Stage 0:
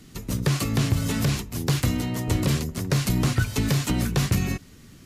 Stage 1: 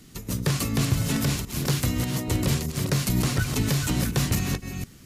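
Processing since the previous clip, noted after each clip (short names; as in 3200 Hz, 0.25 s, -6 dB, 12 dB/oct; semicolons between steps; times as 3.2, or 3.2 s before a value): reverse delay 0.242 s, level -6 dB; high shelf 5800 Hz +5 dB; gain -2 dB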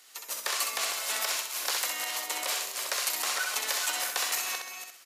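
HPF 660 Hz 24 dB/oct; feedback echo 64 ms, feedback 36%, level -4.5 dB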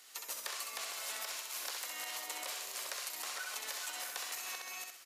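compressor 10:1, threshold -36 dBFS, peak gain reduction 12 dB; gain -2 dB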